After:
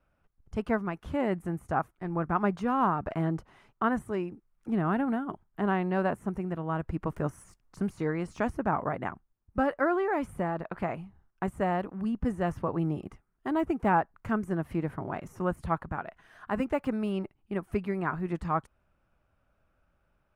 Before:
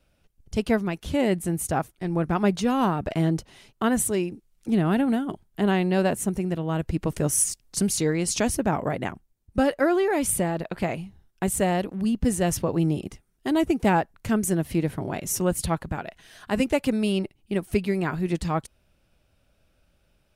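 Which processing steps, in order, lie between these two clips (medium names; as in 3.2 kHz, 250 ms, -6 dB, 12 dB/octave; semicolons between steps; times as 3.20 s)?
de-esser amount 70%; FFT filter 530 Hz 0 dB, 1.2 kHz +9 dB, 3.9 kHz -12 dB; trim -6.5 dB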